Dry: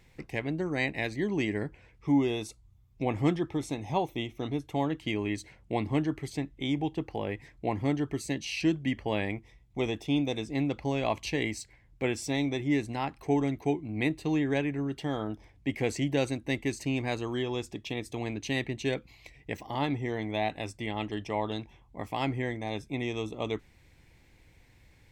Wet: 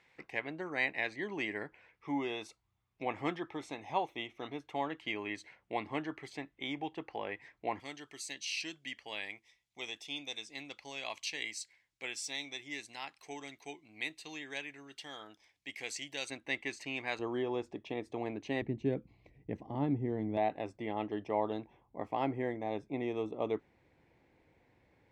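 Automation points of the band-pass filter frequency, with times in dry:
band-pass filter, Q 0.69
1.5 kHz
from 7.80 s 5.1 kHz
from 16.30 s 1.9 kHz
from 17.19 s 640 Hz
from 18.62 s 220 Hz
from 20.37 s 550 Hz

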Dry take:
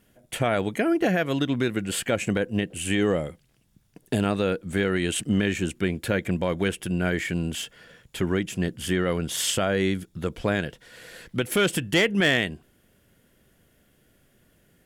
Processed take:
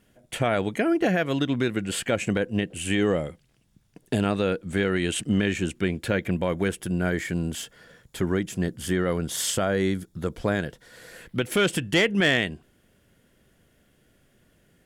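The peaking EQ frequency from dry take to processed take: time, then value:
peaking EQ -7 dB 0.61 oct
6.03 s 14 kHz
6.71 s 2.7 kHz
11.08 s 2.7 kHz
11.52 s 14 kHz

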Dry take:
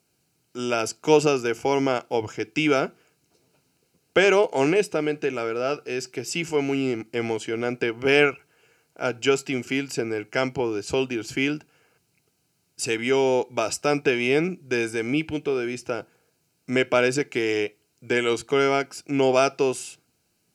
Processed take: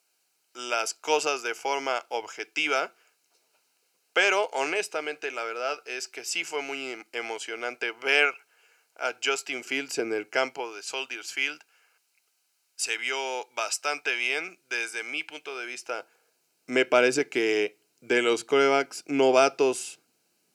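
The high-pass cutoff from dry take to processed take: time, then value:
9.41 s 740 Hz
10.16 s 280 Hz
10.74 s 1 kHz
15.50 s 1 kHz
16.98 s 260 Hz

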